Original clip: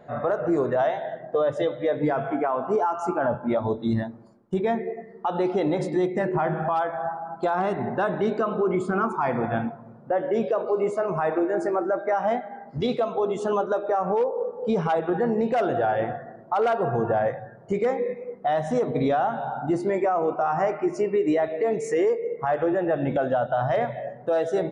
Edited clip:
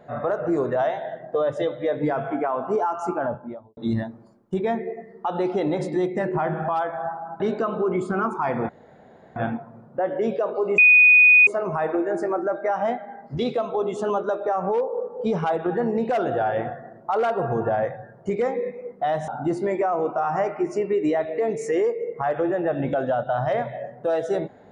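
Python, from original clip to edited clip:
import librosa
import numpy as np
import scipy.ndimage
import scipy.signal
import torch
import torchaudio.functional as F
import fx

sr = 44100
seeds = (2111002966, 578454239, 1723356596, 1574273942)

y = fx.studio_fade_out(x, sr, start_s=3.06, length_s=0.71)
y = fx.edit(y, sr, fx.cut(start_s=7.4, length_s=0.79),
    fx.insert_room_tone(at_s=9.48, length_s=0.67),
    fx.insert_tone(at_s=10.9, length_s=0.69, hz=2480.0, db=-9.5),
    fx.cut(start_s=18.71, length_s=0.8), tone=tone)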